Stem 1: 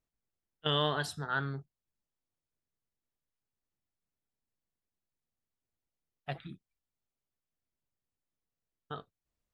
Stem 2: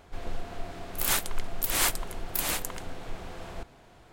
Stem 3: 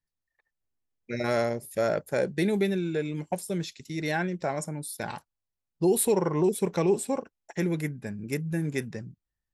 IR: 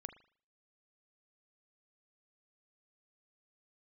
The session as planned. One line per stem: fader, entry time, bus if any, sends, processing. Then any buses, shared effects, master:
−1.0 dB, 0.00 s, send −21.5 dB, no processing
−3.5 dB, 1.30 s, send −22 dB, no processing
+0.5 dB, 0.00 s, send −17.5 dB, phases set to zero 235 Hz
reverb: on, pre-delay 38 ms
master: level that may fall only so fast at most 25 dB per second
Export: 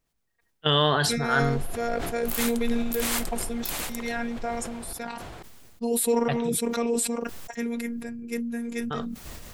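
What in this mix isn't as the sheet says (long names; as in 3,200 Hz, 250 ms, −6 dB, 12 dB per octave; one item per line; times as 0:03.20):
stem 1 −1.0 dB → +8.0 dB
stem 3: send off
reverb return −8.5 dB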